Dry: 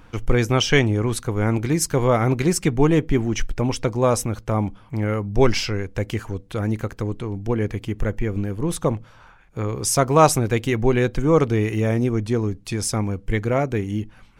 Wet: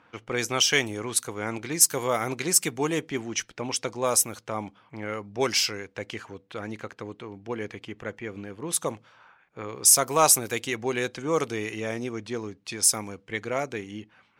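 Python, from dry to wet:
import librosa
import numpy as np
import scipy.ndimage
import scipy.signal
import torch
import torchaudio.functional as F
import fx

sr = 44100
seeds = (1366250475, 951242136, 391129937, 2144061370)

p1 = scipy.signal.sosfilt(scipy.signal.butter(2, 84.0, 'highpass', fs=sr, output='sos'), x)
p2 = fx.riaa(p1, sr, side='recording')
p3 = fx.env_lowpass(p2, sr, base_hz=2100.0, full_db=-15.5)
p4 = 10.0 ** (-6.0 / 20.0) * np.tanh(p3 / 10.0 ** (-6.0 / 20.0))
p5 = p3 + (p4 * 10.0 ** (-6.0 / 20.0))
y = p5 * 10.0 ** (-8.5 / 20.0)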